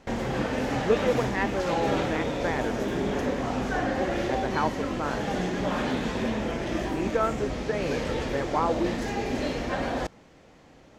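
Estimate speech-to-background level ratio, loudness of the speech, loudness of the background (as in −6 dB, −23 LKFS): −1.5 dB, −31.0 LKFS, −29.5 LKFS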